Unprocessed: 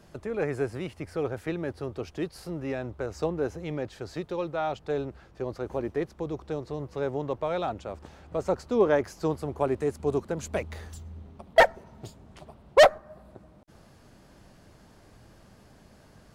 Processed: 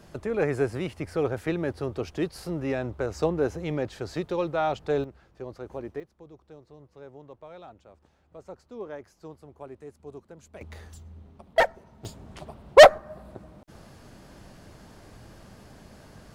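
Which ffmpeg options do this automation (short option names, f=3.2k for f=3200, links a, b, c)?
-af "asetnsamples=n=441:p=0,asendcmd='5.04 volume volume -5.5dB;6 volume volume -16dB;10.61 volume volume -3.5dB;12.05 volume volume 5.5dB',volume=3.5dB"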